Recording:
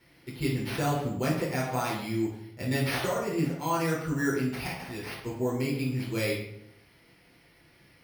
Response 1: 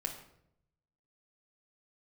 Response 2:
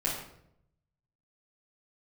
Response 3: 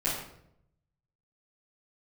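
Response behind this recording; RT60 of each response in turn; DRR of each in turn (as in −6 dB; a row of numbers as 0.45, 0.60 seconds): 2; 0.75, 0.75, 0.75 seconds; 2.5, −6.5, −12.0 decibels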